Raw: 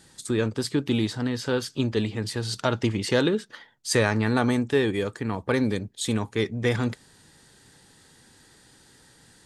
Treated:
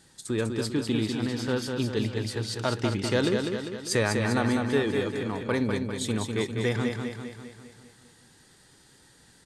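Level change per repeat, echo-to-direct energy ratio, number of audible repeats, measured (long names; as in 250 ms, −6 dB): −5.5 dB, −3.5 dB, 6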